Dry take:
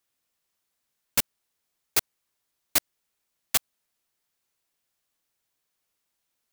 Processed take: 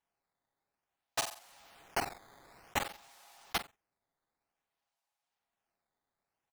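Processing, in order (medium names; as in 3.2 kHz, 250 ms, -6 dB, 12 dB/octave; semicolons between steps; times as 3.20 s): full-wave rectifier; resonant high-pass 760 Hz, resonance Q 4.9; treble shelf 11 kHz -9.5 dB; comb 7.3 ms, depth 72%; flutter echo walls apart 7.7 m, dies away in 0.22 s; decimation with a swept rate 9×, swing 160% 0.54 Hz; 1.18–3.56 s: level flattener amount 50%; trim -6 dB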